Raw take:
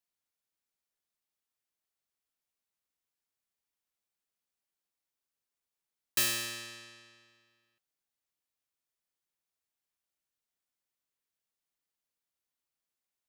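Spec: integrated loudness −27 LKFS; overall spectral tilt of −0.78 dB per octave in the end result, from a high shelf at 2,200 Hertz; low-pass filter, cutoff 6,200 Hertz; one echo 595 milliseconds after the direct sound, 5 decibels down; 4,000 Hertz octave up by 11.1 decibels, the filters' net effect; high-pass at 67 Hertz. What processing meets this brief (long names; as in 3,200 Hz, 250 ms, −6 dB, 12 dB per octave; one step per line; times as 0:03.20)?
high-pass filter 67 Hz
low-pass filter 6,200 Hz
high-shelf EQ 2,200 Hz +8 dB
parametric band 4,000 Hz +7 dB
single-tap delay 595 ms −5 dB
level −1 dB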